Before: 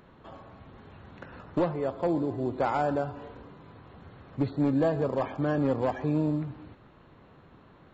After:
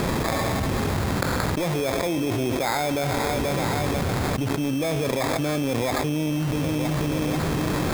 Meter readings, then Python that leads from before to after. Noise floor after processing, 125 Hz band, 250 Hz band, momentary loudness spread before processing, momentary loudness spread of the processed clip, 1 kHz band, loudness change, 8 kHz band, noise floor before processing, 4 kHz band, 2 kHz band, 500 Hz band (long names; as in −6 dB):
−26 dBFS, +9.0 dB, +5.5 dB, 20 LU, 1 LU, +6.5 dB, +4.0 dB, can't be measured, −56 dBFS, +22.0 dB, +13.5 dB, +5.0 dB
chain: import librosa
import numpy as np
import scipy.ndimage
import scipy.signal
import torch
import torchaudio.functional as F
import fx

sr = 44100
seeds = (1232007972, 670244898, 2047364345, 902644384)

p1 = fx.env_lowpass(x, sr, base_hz=1400.0, full_db=-24.5)
p2 = fx.quant_dither(p1, sr, seeds[0], bits=6, dither='none')
p3 = p1 + F.gain(torch.from_numpy(p2), -3.0).numpy()
p4 = fx.echo_feedback(p3, sr, ms=484, feedback_pct=43, wet_db=-22.0)
p5 = fx.sample_hold(p4, sr, seeds[1], rate_hz=2900.0, jitter_pct=0)
p6 = fx.env_flatten(p5, sr, amount_pct=100)
y = F.gain(torch.from_numpy(p6), -6.5).numpy()